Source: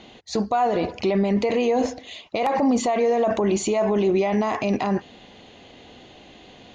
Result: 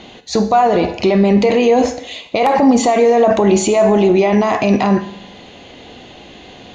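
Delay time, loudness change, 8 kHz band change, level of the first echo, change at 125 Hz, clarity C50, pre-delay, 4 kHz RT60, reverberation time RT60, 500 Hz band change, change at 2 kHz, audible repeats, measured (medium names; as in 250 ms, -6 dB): no echo, +9.0 dB, +9.0 dB, no echo, +9.5 dB, 13.0 dB, 11 ms, 0.75 s, 0.75 s, +9.0 dB, +9.0 dB, no echo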